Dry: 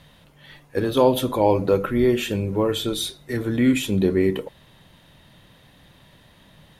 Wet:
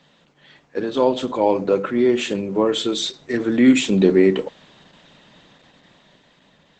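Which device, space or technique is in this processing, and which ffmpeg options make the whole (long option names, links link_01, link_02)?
video call: -af "highpass=frequency=170:width=0.5412,highpass=frequency=170:width=1.3066,dynaudnorm=framelen=270:gausssize=11:maxgain=13dB,volume=-1dB" -ar 48000 -c:a libopus -b:a 12k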